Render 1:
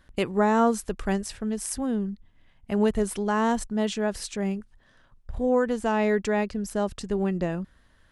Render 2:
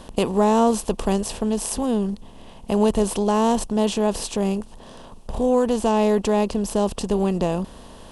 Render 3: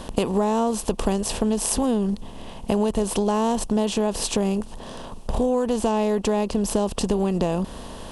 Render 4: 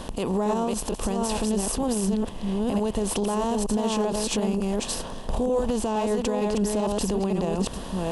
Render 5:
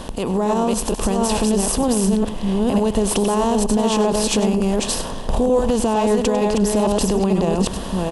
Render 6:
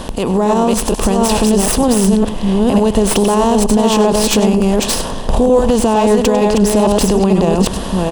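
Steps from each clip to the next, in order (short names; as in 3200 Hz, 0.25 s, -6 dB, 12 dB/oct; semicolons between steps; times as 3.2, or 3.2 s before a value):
per-bin compression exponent 0.6; band shelf 1700 Hz -11 dB 1 oct; gain +2.5 dB
compressor, threshold -24 dBFS, peak gain reduction 11 dB; gain +5.5 dB
reverse delay 0.458 s, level -3.5 dB; limiter -16.5 dBFS, peak gain reduction 10 dB
AGC gain up to 3 dB; echo 99 ms -13.5 dB; gain +4 dB
tracing distortion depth 0.036 ms; gain +6 dB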